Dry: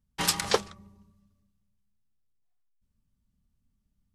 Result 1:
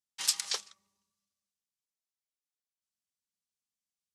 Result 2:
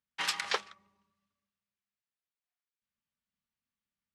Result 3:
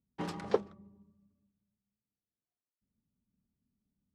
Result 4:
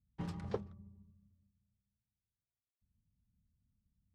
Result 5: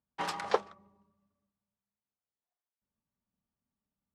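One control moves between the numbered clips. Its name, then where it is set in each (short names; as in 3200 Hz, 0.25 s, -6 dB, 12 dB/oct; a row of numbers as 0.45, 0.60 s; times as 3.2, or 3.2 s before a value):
band-pass, frequency: 6500, 2100, 300, 100, 770 Hz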